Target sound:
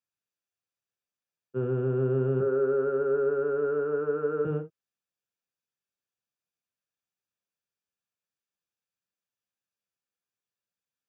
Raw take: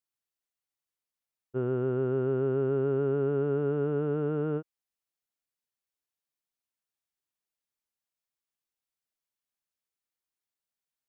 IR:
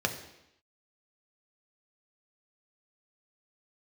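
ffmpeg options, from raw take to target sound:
-filter_complex "[0:a]asettb=1/sr,asplit=3[link_01][link_02][link_03];[link_01]atrim=end=2.404[link_04];[link_02]atrim=start=2.4:end=4.45,asetpts=PTS-STARTPTS,afade=type=in:duration=0.004:curve=qsin,afade=type=out:start_time=2.046:duration=0.004:curve=qsin,highpass=330,equalizer=frequency=490:width_type=q:width=4:gain=9,equalizer=frequency=730:width_type=q:width=4:gain=-7,equalizer=frequency=1400:width_type=q:width=4:gain=8,lowpass=frequency=2200:width=0.5412,lowpass=frequency=2200:width=1.3066[link_05];[link_03]atrim=start=4.446[link_06];[link_04][link_05]acrossfade=duration=0.004:curve1=hsin:curve2=qsin[link_07];[link_07][link_06]acrossfade=duration=0.004:curve1=qsin:curve2=hsin[link_08];[1:a]atrim=start_sample=2205,atrim=end_sample=3528[link_09];[link_08][link_09]afir=irnorm=-1:irlink=0,volume=-8.5dB"

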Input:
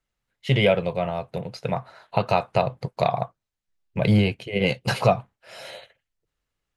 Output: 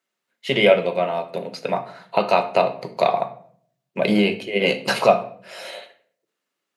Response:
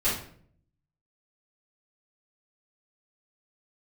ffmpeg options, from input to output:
-filter_complex "[0:a]highpass=frequency=220:width=0.5412,highpass=frequency=220:width=1.3066,bandreject=frequency=790:width=25,asplit=2[link_01][link_02];[1:a]atrim=start_sample=2205[link_03];[link_02][link_03]afir=irnorm=-1:irlink=0,volume=-17dB[link_04];[link_01][link_04]amix=inputs=2:normalize=0,volume=3dB"

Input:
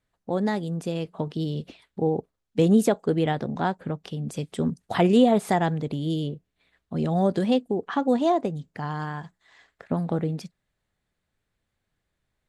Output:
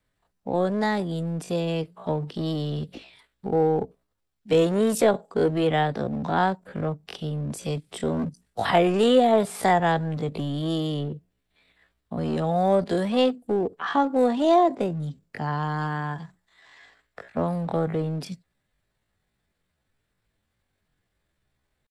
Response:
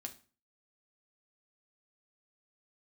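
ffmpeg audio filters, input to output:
-filter_complex "[0:a]acrossover=split=360|420|1900[link_01][link_02][link_03][link_04];[link_01]volume=31dB,asoftclip=hard,volume=-31dB[link_05];[link_05][link_02][link_03][link_04]amix=inputs=4:normalize=0,bandreject=frequency=6500:width=13,atempo=0.57,volume=3.5dB"

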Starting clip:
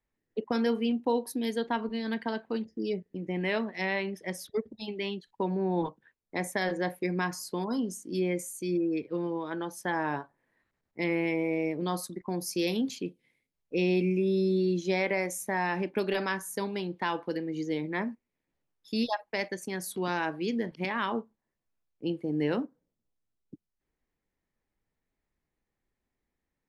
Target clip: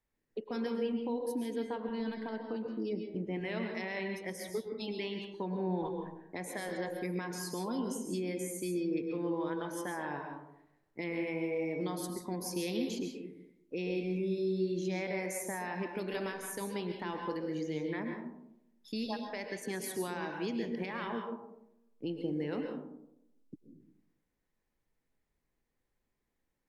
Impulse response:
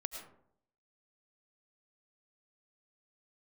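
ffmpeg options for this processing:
-filter_complex "[0:a]alimiter=level_in=3dB:limit=-24dB:level=0:latency=1:release=235,volume=-3dB[link_01];[1:a]atrim=start_sample=2205,asetrate=34839,aresample=44100[link_02];[link_01][link_02]afir=irnorm=-1:irlink=0,asplit=3[link_03][link_04][link_05];[link_03]afade=type=out:start_time=0.77:duration=0.02[link_06];[link_04]adynamicequalizer=threshold=0.00224:dfrequency=1600:dqfactor=0.7:tfrequency=1600:tqfactor=0.7:attack=5:release=100:ratio=0.375:range=3:mode=cutabove:tftype=highshelf,afade=type=in:start_time=0.77:duration=0.02,afade=type=out:start_time=3.32:duration=0.02[link_07];[link_05]afade=type=in:start_time=3.32:duration=0.02[link_08];[link_06][link_07][link_08]amix=inputs=3:normalize=0"

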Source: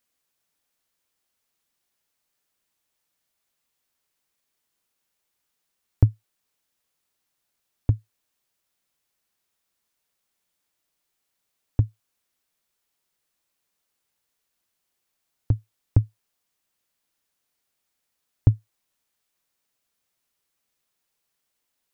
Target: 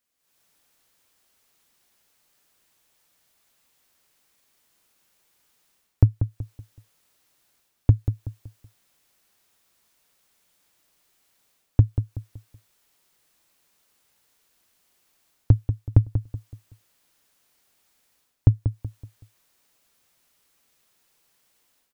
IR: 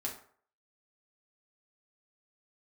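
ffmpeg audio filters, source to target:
-filter_complex "[0:a]dynaudnorm=framelen=180:gausssize=3:maxgain=14dB,asplit=2[link_01][link_02];[link_02]adelay=188,lowpass=frequency=2000:poles=1,volume=-9dB,asplit=2[link_03][link_04];[link_04]adelay=188,lowpass=frequency=2000:poles=1,volume=0.36,asplit=2[link_05][link_06];[link_06]adelay=188,lowpass=frequency=2000:poles=1,volume=0.36,asplit=2[link_07][link_08];[link_08]adelay=188,lowpass=frequency=2000:poles=1,volume=0.36[link_09];[link_03][link_05][link_07][link_09]amix=inputs=4:normalize=0[link_10];[link_01][link_10]amix=inputs=2:normalize=0,volume=-3dB"

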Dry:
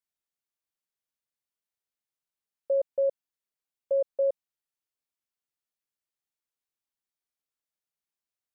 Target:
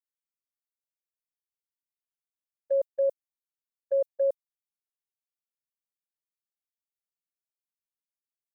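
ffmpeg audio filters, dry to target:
ffmpeg -i in.wav -af "agate=range=-24dB:threshold=-27dB:ratio=16:detection=peak,crystalizer=i=4:c=0" out.wav

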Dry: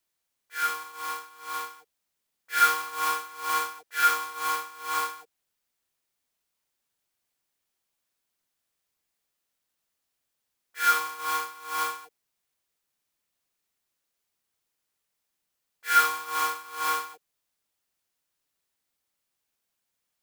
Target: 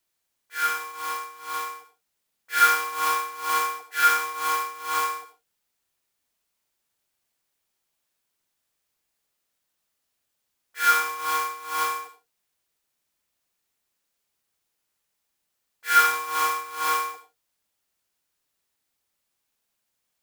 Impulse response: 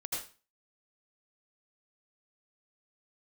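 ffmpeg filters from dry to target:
-filter_complex "[0:a]asplit=2[link_01][link_02];[1:a]atrim=start_sample=2205,afade=type=out:start_time=0.28:duration=0.01,atrim=end_sample=12789,asetrate=52920,aresample=44100[link_03];[link_02][link_03]afir=irnorm=-1:irlink=0,volume=-4.5dB[link_04];[link_01][link_04]amix=inputs=2:normalize=0"

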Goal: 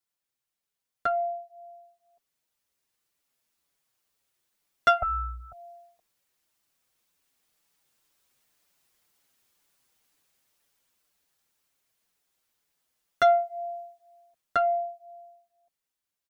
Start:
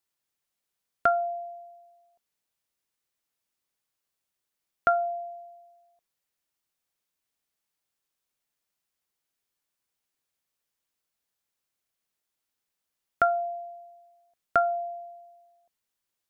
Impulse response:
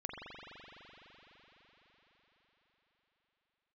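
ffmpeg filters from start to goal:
-filter_complex "[0:a]dynaudnorm=framelen=310:gausssize=17:maxgain=16dB,asoftclip=type=tanh:threshold=-10.5dB,asettb=1/sr,asplit=3[link_01][link_02][link_03];[link_01]atrim=end=5.024[link_04];[link_02]atrim=start=5.02:end=5.52,asetpts=PTS-STARTPTS,afade=type=in:duration=0.004:curve=qsin,afade=type=out:start_time=0.496:duration=0.004:curve=qsin,aeval=exprs='val(0)*sin(2*PI*630*n/s)':channel_layout=same[link_05];[link_03]atrim=start=5.516[link_06];[link_04][link_05]acrossfade=duration=0.004:curve1=hsin:curve2=qsin[link_07];[link_07][link_06]acrossfade=duration=0.004:curve1=qsin:curve2=hsin,asplit=2[link_08][link_09];[link_09]adelay=6.1,afreqshift=-2[link_10];[link_08][link_10]amix=inputs=2:normalize=1"

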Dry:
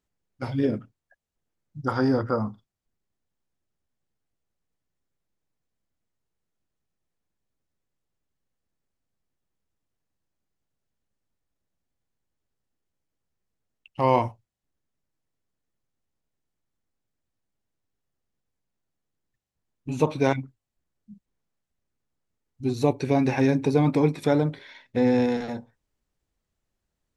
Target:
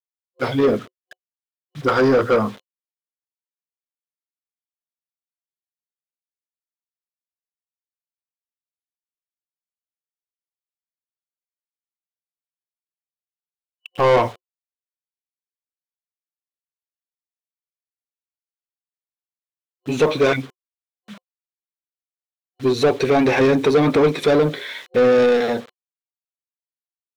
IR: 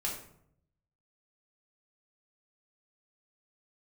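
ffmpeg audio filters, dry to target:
-filter_complex "[0:a]acrusher=bits=8:mix=0:aa=0.000001,superequalizer=7b=1.78:9b=0.562:13b=1.58,asplit=2[link_01][link_02];[link_02]highpass=frequency=720:poles=1,volume=23dB,asoftclip=type=tanh:threshold=-7dB[link_03];[link_01][link_03]amix=inputs=2:normalize=0,lowpass=frequency=2600:poles=1,volume=-6dB"

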